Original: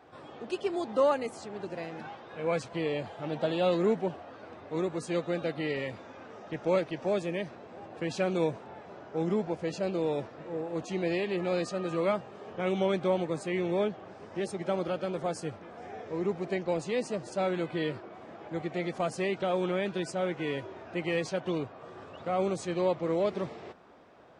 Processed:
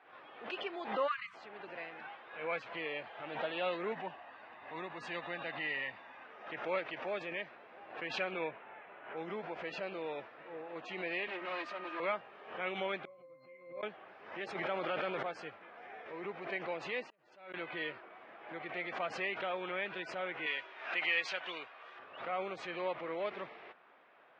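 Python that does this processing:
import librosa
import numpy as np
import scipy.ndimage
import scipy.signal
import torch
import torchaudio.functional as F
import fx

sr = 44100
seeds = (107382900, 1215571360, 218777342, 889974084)

y = fx.spec_erase(x, sr, start_s=1.07, length_s=0.27, low_hz=200.0, high_hz=990.0)
y = fx.comb(y, sr, ms=1.1, depth=0.44, at=(3.92, 6.24))
y = fx.high_shelf_res(y, sr, hz=3900.0, db=-11.5, q=1.5, at=(8.31, 9.17))
y = fx.lower_of_two(y, sr, delay_ms=3.2, at=(11.27, 12.0))
y = fx.octave_resonator(y, sr, note='C', decay_s=0.41, at=(13.05, 13.83))
y = fx.env_flatten(y, sr, amount_pct=100, at=(14.55, 15.23))
y = fx.gate_flip(y, sr, shuts_db=-36.0, range_db=-36, at=(17.08, 17.54))
y = fx.tilt_eq(y, sr, slope=4.0, at=(20.46, 21.99))
y = scipy.signal.sosfilt(scipy.signal.butter(4, 2500.0, 'lowpass', fs=sr, output='sos'), y)
y = np.diff(y, prepend=0.0)
y = fx.pre_swell(y, sr, db_per_s=89.0)
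y = y * 10.0 ** (12.5 / 20.0)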